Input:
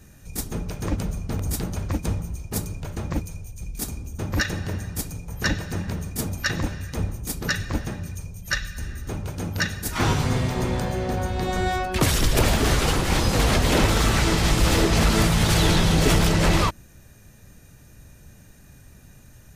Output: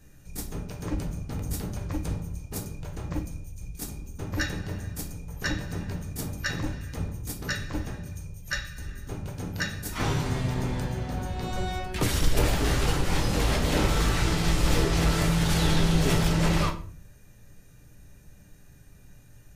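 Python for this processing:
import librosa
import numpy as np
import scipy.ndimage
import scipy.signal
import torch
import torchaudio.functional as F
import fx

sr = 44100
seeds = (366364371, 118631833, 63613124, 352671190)

y = fx.room_shoebox(x, sr, seeds[0], volume_m3=40.0, walls='mixed', distance_m=0.41)
y = F.gain(torch.from_numpy(y), -7.5).numpy()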